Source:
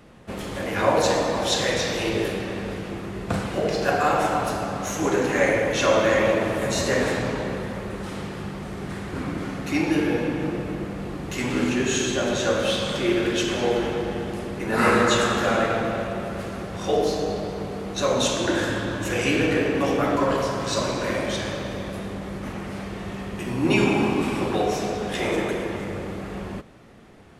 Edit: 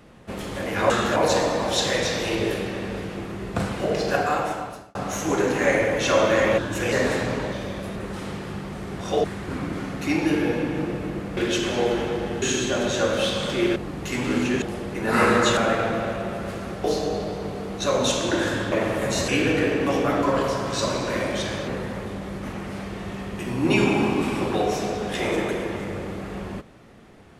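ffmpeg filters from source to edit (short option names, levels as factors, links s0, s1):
-filter_complex "[0:a]asplit=20[s0][s1][s2][s3][s4][s5][s6][s7][s8][s9][s10][s11][s12][s13][s14][s15][s16][s17][s18][s19];[s0]atrim=end=0.902[s20];[s1]atrim=start=15.218:end=15.482[s21];[s2]atrim=start=0.898:end=4.69,asetpts=PTS-STARTPTS,afade=t=out:st=2.962:d=0.83[s22];[s3]atrim=start=4.69:end=6.322,asetpts=PTS-STARTPTS,afade=t=in:d=0.004:c=hsin[s23];[s4]atrim=start=18.878:end=19.222[s24];[s5]atrim=start=6.878:end=7.482[s25];[s6]atrim=start=21.618:end=22.062[s26];[s7]atrim=start=7.858:end=8.892[s27];[s8]atrim=start=16.748:end=17.002[s28];[s9]atrim=start=8.888:end=11.022[s29];[s10]atrim=start=13.218:end=14.272[s30];[s11]atrim=start=11.878:end=13.222[s31];[s12]atrim=start=11.018:end=11.882[s32];[s13]atrim=start=14.268:end=15.222[s33];[s14]atrim=start=15.478:end=16.752[s34];[s15]atrim=start=16.998:end=18.882[s35];[s16]atrim=start=6.318:end=6.882[s36];[s17]atrim=start=19.218:end=21.622[s37];[s18]atrim=start=7.478:end=7.862[s38];[s19]atrim=start=22.058[s39];[s20][s21]acrossfade=d=0.004:c1=hsin:c2=hsin[s40];[s22][s23]concat=n=2:v=0:a=1[s41];[s40][s41]acrossfade=d=0.004:c1=hsin:c2=hsin[s42];[s42][s24]acrossfade=d=0.004:c1=hsin:c2=hsin[s43];[s43][s25]acrossfade=d=0.004:c1=hsin:c2=hsin[s44];[s44][s26]acrossfade=d=0.004:c1=hsin:c2=hsin[s45];[s45][s27]acrossfade=d=0.004:c1=hsin:c2=hsin[s46];[s46][s28]acrossfade=d=0.004:c1=hsin:c2=hsin[s47];[s47][s29]acrossfade=d=0.004:c1=hsin:c2=hsin[s48];[s48][s30]acrossfade=d=0.004:c1=hsin:c2=hsin[s49];[s49][s31]acrossfade=d=0.004:c1=hsin:c2=hsin[s50];[s50][s32]acrossfade=d=0.004:c1=hsin:c2=hsin[s51];[s51][s33]acrossfade=d=0.004:c1=hsin:c2=hsin[s52];[s52][s34]acrossfade=d=0.004:c1=hsin:c2=hsin[s53];[s53][s35]acrossfade=d=0.004:c1=hsin:c2=hsin[s54];[s54][s36]acrossfade=d=0.004:c1=hsin:c2=hsin[s55];[s55][s37]acrossfade=d=0.004:c1=hsin:c2=hsin[s56];[s56][s38]acrossfade=d=0.004:c1=hsin:c2=hsin[s57];[s57][s39]acrossfade=d=0.004:c1=hsin:c2=hsin"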